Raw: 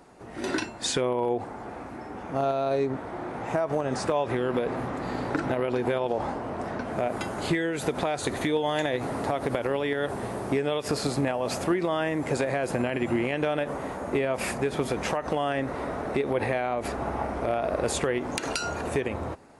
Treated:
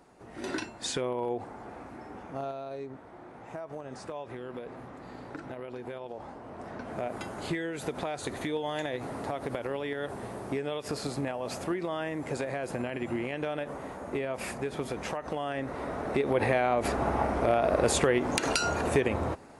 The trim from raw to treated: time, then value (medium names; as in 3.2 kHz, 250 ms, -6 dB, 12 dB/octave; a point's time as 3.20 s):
2.16 s -5.5 dB
2.69 s -13.5 dB
6.27 s -13.5 dB
6.90 s -6.5 dB
15.45 s -6.5 dB
16.63 s +2 dB